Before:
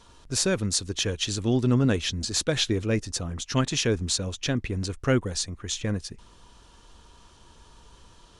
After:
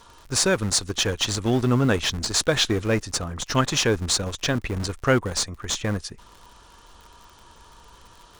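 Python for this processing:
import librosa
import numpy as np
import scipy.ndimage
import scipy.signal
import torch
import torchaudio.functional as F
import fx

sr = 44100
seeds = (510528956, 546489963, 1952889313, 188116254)

p1 = fx.schmitt(x, sr, flips_db=-26.5)
p2 = x + (p1 * librosa.db_to_amplitude(-10.0))
p3 = fx.curve_eq(p2, sr, hz=(260.0, 1200.0, 2600.0), db=(0, 8, 3))
y = fx.dmg_crackle(p3, sr, seeds[0], per_s=69.0, level_db=-38.0)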